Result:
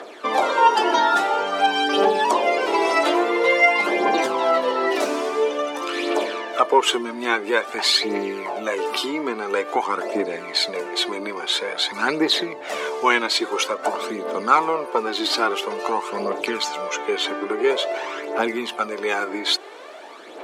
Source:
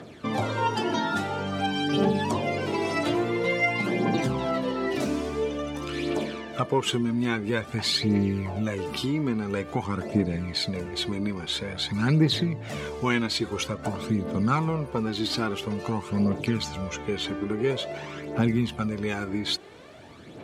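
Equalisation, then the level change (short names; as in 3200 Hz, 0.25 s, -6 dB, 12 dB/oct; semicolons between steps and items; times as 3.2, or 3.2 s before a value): HPF 360 Hz 24 dB/oct; bell 1000 Hz +5 dB 1.4 oct; +7.0 dB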